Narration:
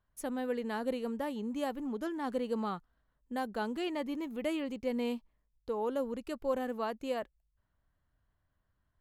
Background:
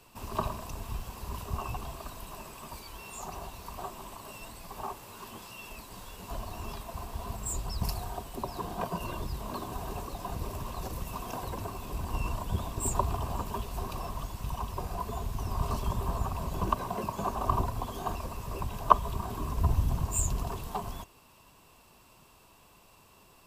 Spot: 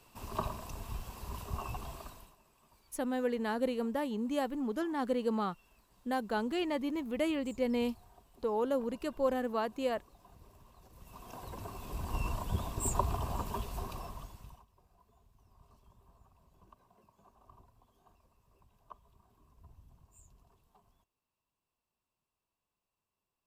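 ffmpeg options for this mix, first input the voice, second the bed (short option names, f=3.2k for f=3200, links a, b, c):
-filter_complex "[0:a]adelay=2750,volume=2dB[a];[1:a]volume=16dB,afade=t=out:st=1.97:d=0.38:silence=0.11885,afade=t=in:st=10.91:d=1.27:silence=0.1,afade=t=out:st=13.63:d=1.02:silence=0.0334965[b];[a][b]amix=inputs=2:normalize=0"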